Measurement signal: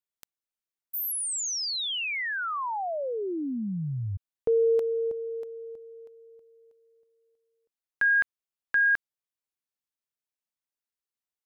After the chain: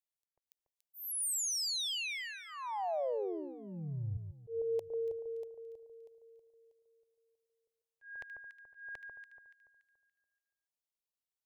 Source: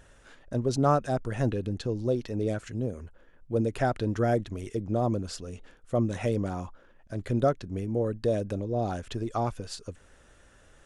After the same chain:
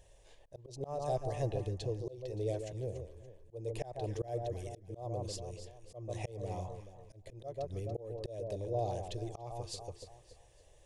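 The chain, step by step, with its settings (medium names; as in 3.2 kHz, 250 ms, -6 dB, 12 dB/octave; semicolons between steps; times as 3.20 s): static phaser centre 580 Hz, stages 4; echo whose repeats swap between lows and highs 143 ms, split 1.4 kHz, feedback 59%, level -7 dB; slow attack 290 ms; trim -4 dB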